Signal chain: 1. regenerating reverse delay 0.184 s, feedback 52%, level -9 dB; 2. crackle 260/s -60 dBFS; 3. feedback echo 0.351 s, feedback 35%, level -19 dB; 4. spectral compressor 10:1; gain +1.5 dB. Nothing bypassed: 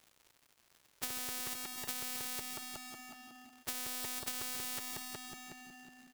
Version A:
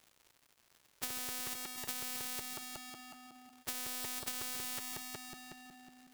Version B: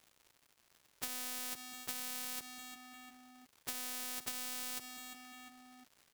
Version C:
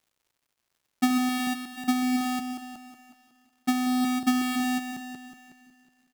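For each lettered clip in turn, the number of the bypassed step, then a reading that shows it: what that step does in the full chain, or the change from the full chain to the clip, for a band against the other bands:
3, momentary loudness spread change +1 LU; 1, 125 Hz band -7.5 dB; 4, 250 Hz band +19.0 dB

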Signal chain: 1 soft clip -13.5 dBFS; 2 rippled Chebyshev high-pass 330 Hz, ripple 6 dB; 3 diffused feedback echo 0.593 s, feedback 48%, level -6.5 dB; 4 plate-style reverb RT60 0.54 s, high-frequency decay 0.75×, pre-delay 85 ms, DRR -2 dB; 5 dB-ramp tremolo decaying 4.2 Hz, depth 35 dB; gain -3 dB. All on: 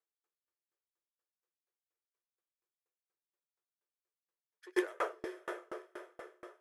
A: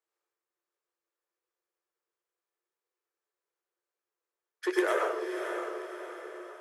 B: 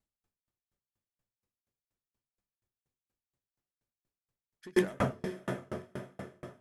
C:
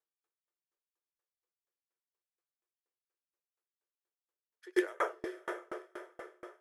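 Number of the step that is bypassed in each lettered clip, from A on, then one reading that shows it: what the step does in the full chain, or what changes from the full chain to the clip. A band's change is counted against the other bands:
5, momentary loudness spread change -2 LU; 2, 1 kHz band -3.0 dB; 1, distortion -15 dB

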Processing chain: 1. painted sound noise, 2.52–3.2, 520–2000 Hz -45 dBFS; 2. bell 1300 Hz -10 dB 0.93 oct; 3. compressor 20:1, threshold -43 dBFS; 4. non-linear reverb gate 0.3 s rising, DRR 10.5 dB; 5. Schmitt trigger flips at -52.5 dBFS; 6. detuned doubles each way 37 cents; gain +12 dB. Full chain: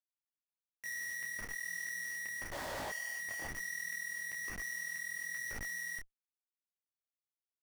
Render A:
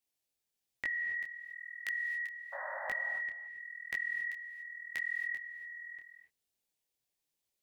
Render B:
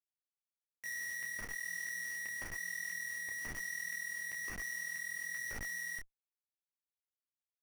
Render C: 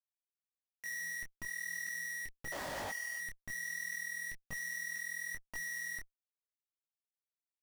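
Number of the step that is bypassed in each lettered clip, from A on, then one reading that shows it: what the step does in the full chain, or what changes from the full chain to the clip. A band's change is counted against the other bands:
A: 5, crest factor change +10.0 dB; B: 1, 500 Hz band -8.5 dB; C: 4, momentary loudness spread change +2 LU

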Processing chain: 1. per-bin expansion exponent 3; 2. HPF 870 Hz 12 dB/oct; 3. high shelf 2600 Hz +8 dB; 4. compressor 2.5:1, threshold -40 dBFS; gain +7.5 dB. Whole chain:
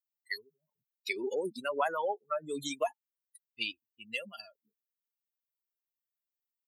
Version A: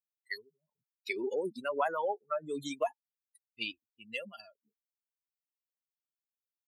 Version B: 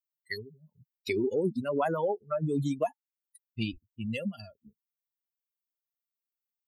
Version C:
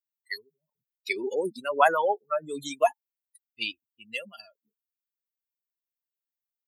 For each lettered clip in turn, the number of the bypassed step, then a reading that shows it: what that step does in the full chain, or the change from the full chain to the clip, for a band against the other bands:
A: 3, 8 kHz band -6.0 dB; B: 2, 125 Hz band +23.5 dB; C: 4, mean gain reduction 4.0 dB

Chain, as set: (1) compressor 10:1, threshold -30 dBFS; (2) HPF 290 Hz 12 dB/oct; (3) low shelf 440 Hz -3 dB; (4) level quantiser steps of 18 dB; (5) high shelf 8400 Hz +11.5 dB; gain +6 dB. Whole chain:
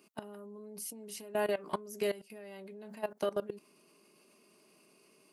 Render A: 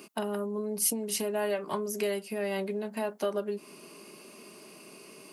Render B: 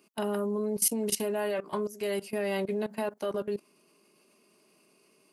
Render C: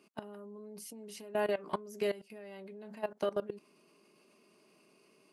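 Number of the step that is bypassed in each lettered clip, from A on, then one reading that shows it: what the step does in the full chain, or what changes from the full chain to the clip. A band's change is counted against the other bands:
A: 4, crest factor change -2.0 dB; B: 1, mean gain reduction 3.5 dB; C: 5, 8 kHz band -6.0 dB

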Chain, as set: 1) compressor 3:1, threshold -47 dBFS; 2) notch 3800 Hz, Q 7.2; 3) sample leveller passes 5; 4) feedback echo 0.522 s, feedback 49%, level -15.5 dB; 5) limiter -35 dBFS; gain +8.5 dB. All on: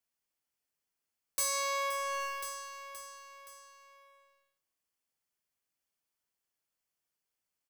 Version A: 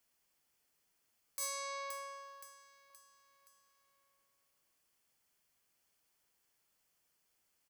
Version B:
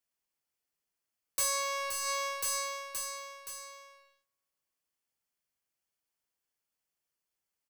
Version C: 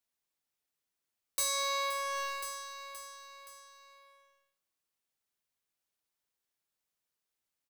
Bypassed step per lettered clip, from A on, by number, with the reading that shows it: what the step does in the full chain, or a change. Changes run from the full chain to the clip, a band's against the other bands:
3, crest factor change +9.5 dB; 1, mean gain reduction 5.5 dB; 2, 4 kHz band +4.5 dB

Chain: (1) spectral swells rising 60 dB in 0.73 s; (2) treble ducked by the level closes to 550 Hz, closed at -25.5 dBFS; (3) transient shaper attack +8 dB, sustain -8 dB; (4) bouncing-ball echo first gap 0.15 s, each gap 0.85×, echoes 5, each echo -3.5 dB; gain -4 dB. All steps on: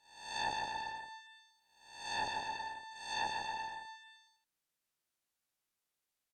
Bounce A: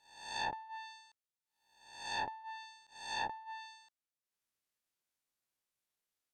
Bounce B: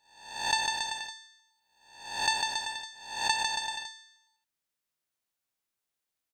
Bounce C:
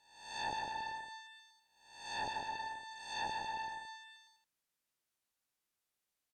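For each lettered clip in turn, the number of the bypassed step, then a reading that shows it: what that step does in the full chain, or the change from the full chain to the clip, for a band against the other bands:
4, momentary loudness spread change -2 LU; 2, 8 kHz band +12.0 dB; 3, crest factor change -2.5 dB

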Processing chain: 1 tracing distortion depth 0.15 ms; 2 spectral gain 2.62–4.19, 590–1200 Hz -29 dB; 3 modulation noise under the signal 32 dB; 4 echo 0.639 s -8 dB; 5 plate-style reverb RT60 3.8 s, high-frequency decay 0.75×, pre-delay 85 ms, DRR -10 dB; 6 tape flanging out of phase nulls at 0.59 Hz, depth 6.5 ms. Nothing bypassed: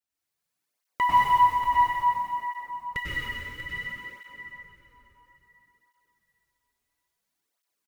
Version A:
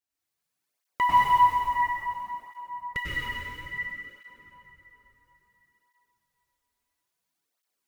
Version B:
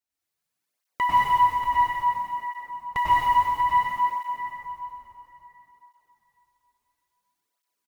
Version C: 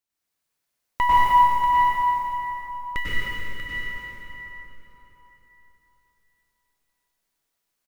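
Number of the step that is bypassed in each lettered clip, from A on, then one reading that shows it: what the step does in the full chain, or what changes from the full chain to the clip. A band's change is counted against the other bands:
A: 4, momentary loudness spread change -3 LU; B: 2, momentary loudness spread change -6 LU; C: 6, loudness change +3.0 LU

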